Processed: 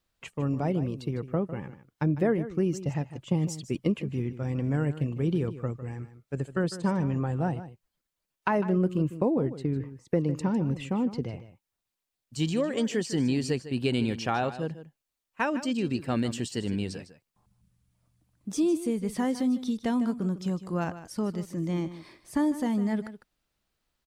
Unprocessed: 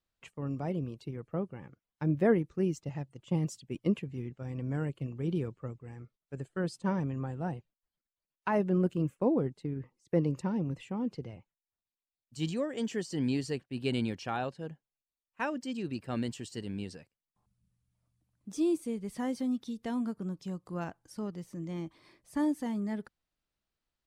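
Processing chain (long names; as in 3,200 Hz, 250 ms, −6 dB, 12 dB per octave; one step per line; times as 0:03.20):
downward compressor 3 to 1, threshold −32 dBFS, peak gain reduction 9.5 dB
on a send: single-tap delay 153 ms −13.5 dB
on the sum: level +8.5 dB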